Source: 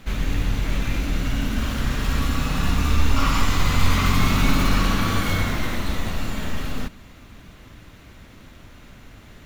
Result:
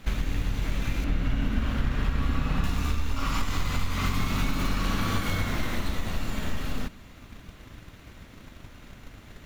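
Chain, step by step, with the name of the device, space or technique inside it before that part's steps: drum-bus smash (transient shaper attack +7 dB, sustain 0 dB; compressor, threshold -17 dBFS, peak gain reduction 11 dB; soft clip -12 dBFS, distortion -21 dB); 1.04–2.64 tone controls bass +2 dB, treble -11 dB; gain -3 dB

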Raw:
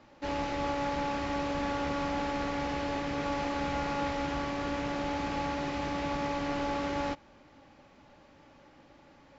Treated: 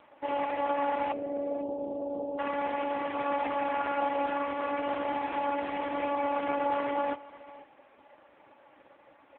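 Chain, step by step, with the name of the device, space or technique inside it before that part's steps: 1.12–2.39 Chebyshev band-pass 130–700 Hz, order 4; satellite phone (BPF 390–3100 Hz; echo 0.489 s -19 dB; gain +6 dB; AMR-NB 4.75 kbps 8000 Hz)

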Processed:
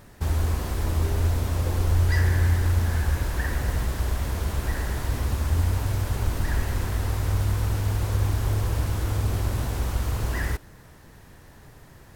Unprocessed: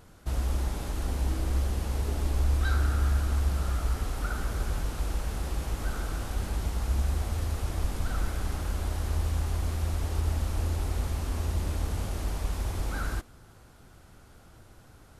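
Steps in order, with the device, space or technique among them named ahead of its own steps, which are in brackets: nightcore (varispeed +25%); gain +4.5 dB

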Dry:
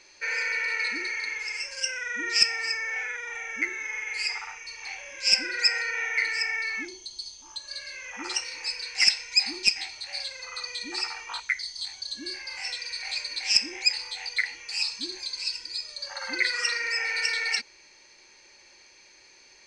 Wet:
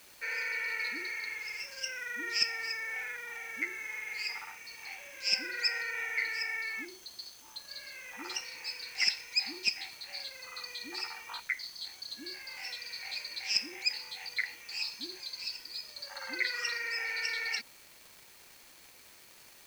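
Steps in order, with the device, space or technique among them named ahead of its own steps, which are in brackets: 78 rpm shellac record (BPF 100–5900 Hz; crackle 400/s -38 dBFS; white noise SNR 21 dB); gain -6.5 dB

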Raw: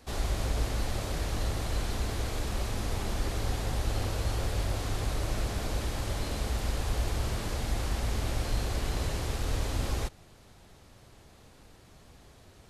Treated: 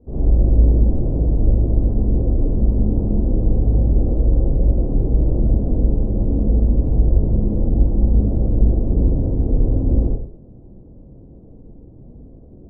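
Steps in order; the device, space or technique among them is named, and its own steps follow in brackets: next room (LPF 470 Hz 24 dB/oct; reverb RT60 0.55 s, pre-delay 41 ms, DRR -8 dB); gain +7.5 dB

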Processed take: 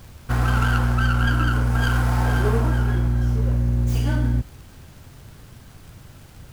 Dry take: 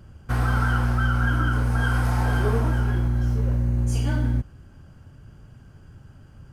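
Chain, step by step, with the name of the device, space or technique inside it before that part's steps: record under a worn stylus (tracing distortion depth 0.12 ms; crackle; pink noise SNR 30 dB); gain +2 dB

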